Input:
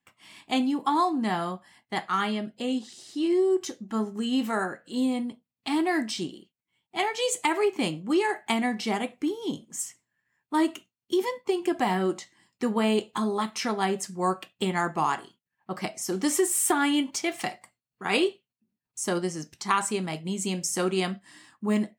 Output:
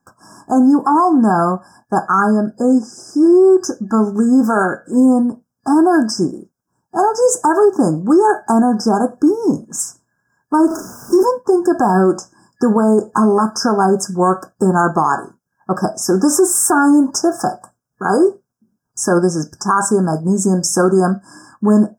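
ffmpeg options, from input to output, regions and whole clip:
ffmpeg -i in.wav -filter_complex "[0:a]asettb=1/sr,asplit=3[link_01][link_02][link_03];[link_01]atrim=end=10.674[link_04];[link_02]atrim=start=10.67:end=11.23,asetpts=PTS-STARTPTS,afade=type=in:duration=0.004:curve=qsin,afade=type=out:start_time=0.556:duration=0.004:curve=qsin,aeval=exprs='val(0)+0.5*0.0119*sgn(val(0))':channel_layout=same,lowshelf=frequency=230:gain=-7,asplit=2[link_05][link_06];[link_06]adelay=37,volume=-4dB[link_07];[link_05][link_07]amix=inputs=2:normalize=0,atrim=end_sample=24696[link_08];[link_03]atrim=start=11.226[link_09];[link_04][link_08]acrossfade=duration=0.004:curve1=hsin:curve2=qsin[link_10];[link_10][link_09]acrossfade=duration=0.004:curve1=qsin:curve2=hsin,afftfilt=real='re*(1-between(b*sr/4096,1700,4900))':imag='im*(1-between(b*sr/4096,1700,4900))':win_size=4096:overlap=0.75,highshelf=frequency=6900:gain=-8.5,alimiter=level_in=19.5dB:limit=-1dB:release=50:level=0:latency=1,volume=-3.5dB" out.wav

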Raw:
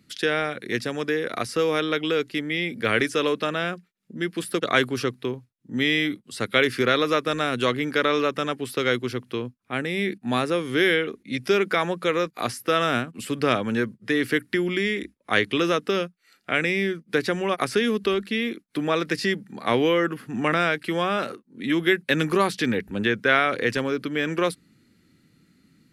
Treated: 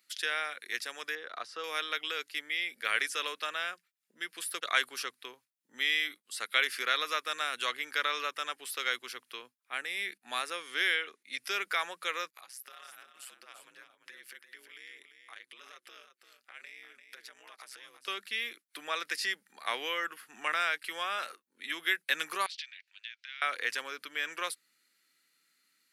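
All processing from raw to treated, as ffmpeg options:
ffmpeg -i in.wav -filter_complex "[0:a]asettb=1/sr,asplit=3[link_01][link_02][link_03];[link_01]atrim=end=1.154[link_04];[link_02]atrim=start=1.15:end=1.64,asetpts=PTS-STARTPTS,afade=type=in:duration=0.004:curve=qsin,afade=type=out:start_time=0.486:duration=0.004:curve=qsin,lowpass=3400,equalizer=frequency=2200:width=2:gain=-10[link_05];[link_03]atrim=start=1.636[link_06];[link_04][link_05]acrossfade=duration=0.004:curve1=hsin:curve2=qsin[link_07];[link_07][link_06]acrossfade=duration=0.004:curve1=qsin:curve2=hsin,asettb=1/sr,asplit=3[link_08][link_09][link_10];[link_08]atrim=end=10.554[link_11];[link_09]atrim=start=10.55:end=11.22,asetpts=PTS-STARTPTS,afade=type=in:duration=0.004:curve=qsin,afade=type=out:start_time=0.666:duration=0.004:curve=qsin,lowpass=9300,deesser=0.25[link_12];[link_10]atrim=start=11.216[link_13];[link_11][link_12]acrossfade=duration=0.004:curve1=hsin:curve2=qsin[link_14];[link_14][link_13]acrossfade=duration=0.004:curve1=qsin:curve2=hsin,asettb=1/sr,asplit=3[link_15][link_16][link_17];[link_15]atrim=end=12.304[link_18];[link_16]atrim=start=12.3:end=18.08,asetpts=PTS-STARTPTS,afade=type=in:duration=0.004:curve=qsin,afade=type=out:start_time=5.776:duration=0.004:curve=qsin,acompressor=threshold=-38dB:ratio=4:attack=3.2:release=140:knee=1:detection=peak,aeval=exprs='val(0)*sin(2*PI*65*n/s)':channel_layout=same,aecho=1:1:344:0.355,atrim=end_sample=254898[link_19];[link_17]atrim=start=18.076[link_20];[link_18][link_19]acrossfade=duration=0.004:curve1=hsin:curve2=qsin[link_21];[link_21][link_20]acrossfade=duration=0.004:curve1=qsin:curve2=hsin,asettb=1/sr,asplit=3[link_22][link_23][link_24];[link_22]atrim=end=22.464[link_25];[link_23]atrim=start=22.46:end=23.42,asetpts=PTS-STARTPTS,afade=type=in:duration=0.004:curve=qsin,afade=type=out:start_time=0.956:duration=0.004:curve=qsin,acompressor=threshold=-28dB:ratio=4:attack=3.2:release=140:knee=1:detection=peak,asuperpass=centerf=3400:order=4:qfactor=1.2[link_26];[link_24]atrim=start=23.416[link_27];[link_25][link_26]acrossfade=duration=0.004:curve1=hsin:curve2=qsin[link_28];[link_28][link_27]acrossfade=duration=0.004:curve1=qsin:curve2=hsin,highpass=1100,highshelf=frequency=8400:gain=9,volume=-5.5dB" out.wav

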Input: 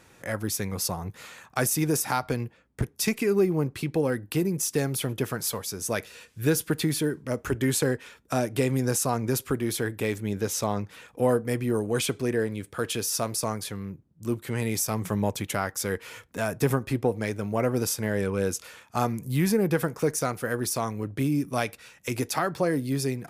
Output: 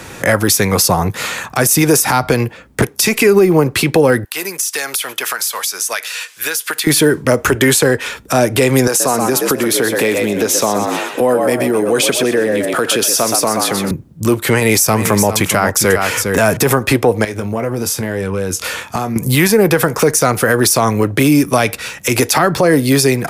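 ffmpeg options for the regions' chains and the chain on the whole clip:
ffmpeg -i in.wav -filter_complex "[0:a]asettb=1/sr,asplit=3[link_01][link_02][link_03];[link_01]atrim=end=4.244[link_04];[link_02]atrim=start=4.24:end=6.87,asetpts=PTS-STARTPTS,afade=type=in:duration=0.004:curve=qsin,afade=type=out:start_time=2.626:duration=0.004:curve=qsin,highpass=1200,acompressor=threshold=-38dB:ratio=10:attack=3.2:release=140:knee=1:detection=peak[link_05];[link_03]atrim=start=6.866[link_06];[link_04][link_05]acrossfade=duration=0.004:curve1=hsin:curve2=qsin[link_07];[link_07][link_06]acrossfade=duration=0.004:curve1=qsin:curve2=hsin,asettb=1/sr,asplit=3[link_08][link_09][link_10];[link_08]atrim=end=8.874[link_11];[link_09]atrim=start=8.87:end=13.91,asetpts=PTS-STARTPTS,afade=type=in:duration=0.004:curve=qsin,afade=type=out:start_time=5.036:duration=0.004:curve=qsin,highpass=230,asplit=5[link_12][link_13][link_14][link_15][link_16];[link_13]adelay=125,afreqshift=68,volume=-7.5dB[link_17];[link_14]adelay=250,afreqshift=136,volume=-16.6dB[link_18];[link_15]adelay=375,afreqshift=204,volume=-25.7dB[link_19];[link_16]adelay=500,afreqshift=272,volume=-34.9dB[link_20];[link_12][link_17][link_18][link_19][link_20]amix=inputs=5:normalize=0,atrim=end_sample=222264,acompressor=threshold=-36dB:ratio=3:attack=3.2:release=140:knee=1:detection=peak[link_21];[link_10]atrim=start=13.906[link_22];[link_11][link_21]acrossfade=duration=0.004:curve1=hsin:curve2=qsin[link_23];[link_23][link_22]acrossfade=duration=0.004:curve1=qsin:curve2=hsin,asettb=1/sr,asplit=3[link_24][link_25][link_26];[link_24]atrim=end=14.524[link_27];[link_25]atrim=start=14.52:end=16.57,asetpts=PTS-STARTPTS,afade=type=in:duration=0.004:curve=qsin,afade=type=out:start_time=2.046:duration=0.004:curve=qsin,equalizer=frequency=3500:width_type=o:width=0.35:gain=-3.5,aecho=1:1:406:0.266,atrim=end_sample=90405[link_28];[link_26]atrim=start=16.566[link_29];[link_27][link_28]acrossfade=duration=0.004:curve1=hsin:curve2=qsin[link_30];[link_30][link_29]acrossfade=duration=0.004:curve1=qsin:curve2=hsin,asettb=1/sr,asplit=3[link_31][link_32][link_33];[link_31]atrim=end=17.244[link_34];[link_32]atrim=start=17.24:end=19.16,asetpts=PTS-STARTPTS,afade=type=in:duration=0.004:curve=qsin,afade=type=out:start_time=1.916:duration=0.004:curve=qsin,acompressor=threshold=-39dB:ratio=6:attack=3.2:release=140:knee=1:detection=peak,asplit=2[link_35][link_36];[link_36]adelay=22,volume=-10dB[link_37];[link_35][link_37]amix=inputs=2:normalize=0,atrim=end_sample=84672[link_38];[link_33]atrim=start=19.156[link_39];[link_34][link_38]acrossfade=duration=0.004:curve1=hsin:curve2=qsin[link_40];[link_40][link_39]acrossfade=duration=0.004:curve1=qsin:curve2=hsin,acrossover=split=89|390[link_41][link_42][link_43];[link_41]acompressor=threshold=-55dB:ratio=4[link_44];[link_42]acompressor=threshold=-40dB:ratio=4[link_45];[link_43]acompressor=threshold=-31dB:ratio=4[link_46];[link_44][link_45][link_46]amix=inputs=3:normalize=0,alimiter=level_in=24.5dB:limit=-1dB:release=50:level=0:latency=1,volume=-1dB" out.wav

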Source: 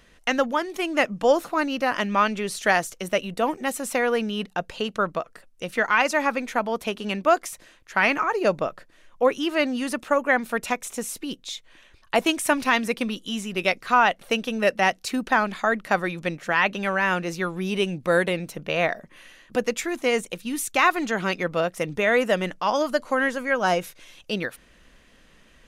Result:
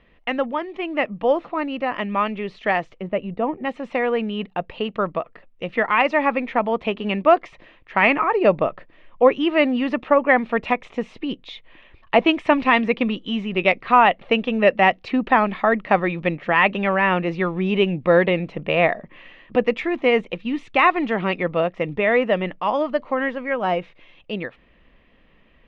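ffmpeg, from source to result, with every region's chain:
ffmpeg -i in.wav -filter_complex "[0:a]asettb=1/sr,asplit=3[link_01][link_02][link_03];[link_01]atrim=end=3.004[link_04];[link_02]atrim=start=3:end=3.65,asetpts=PTS-STARTPTS,afade=type=in:duration=0.004:curve=qsin,afade=type=out:start_time=0.646:duration=0.004:curve=qsin,lowpass=frequency=1200:poles=1,equalizer=frequency=73:width=0.38:gain=5[link_05];[link_03]atrim=start=3.646[link_06];[link_04][link_05]acrossfade=duration=0.004:curve1=hsin:curve2=qsin[link_07];[link_07][link_06]acrossfade=duration=0.004:curve1=qsin:curve2=hsin,lowpass=frequency=2900:width=0.5412,lowpass=frequency=2900:width=1.3066,equalizer=frequency=1500:width=5.8:gain=-10.5,dynaudnorm=framelen=840:gausssize=13:maxgain=9dB" out.wav

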